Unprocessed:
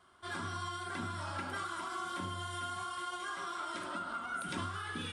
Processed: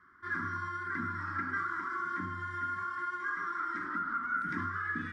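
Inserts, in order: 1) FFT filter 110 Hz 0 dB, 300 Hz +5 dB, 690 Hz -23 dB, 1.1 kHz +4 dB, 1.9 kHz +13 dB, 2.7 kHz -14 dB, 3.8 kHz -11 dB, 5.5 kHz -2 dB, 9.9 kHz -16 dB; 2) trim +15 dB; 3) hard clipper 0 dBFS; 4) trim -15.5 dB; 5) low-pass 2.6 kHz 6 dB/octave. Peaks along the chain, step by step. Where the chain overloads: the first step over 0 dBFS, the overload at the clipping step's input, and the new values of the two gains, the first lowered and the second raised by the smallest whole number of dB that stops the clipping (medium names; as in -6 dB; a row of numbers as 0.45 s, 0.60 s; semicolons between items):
-20.5 dBFS, -5.5 dBFS, -5.5 dBFS, -21.0 dBFS, -22.0 dBFS; nothing clips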